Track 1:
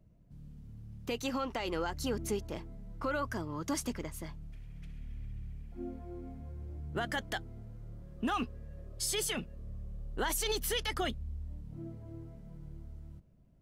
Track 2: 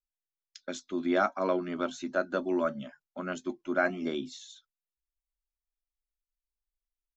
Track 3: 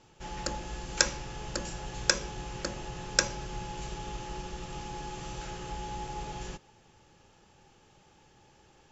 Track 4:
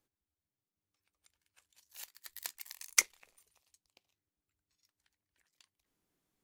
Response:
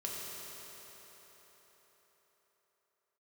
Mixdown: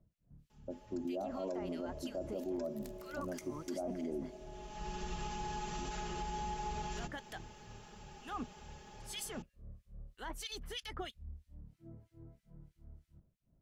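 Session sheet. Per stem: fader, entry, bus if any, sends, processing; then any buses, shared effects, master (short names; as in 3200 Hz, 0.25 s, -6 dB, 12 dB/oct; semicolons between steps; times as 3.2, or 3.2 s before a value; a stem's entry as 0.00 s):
-5.5 dB, 0.00 s, no send, harmonic tremolo 3.1 Hz, depth 100%, crossover 1800 Hz
-5.0 dB, 0.00 s, send -15 dB, steep low-pass 810 Hz 36 dB/oct
+2.5 dB, 0.50 s, no send, comb 4.8 ms, depth 92%; compressor 2:1, threshold -45 dBFS, peak gain reduction 16 dB; auto duck -21 dB, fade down 0.60 s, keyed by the second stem
-17.0 dB, 0.40 s, send -16 dB, dry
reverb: on, RT60 4.7 s, pre-delay 3 ms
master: limiter -31 dBFS, peak gain reduction 10.5 dB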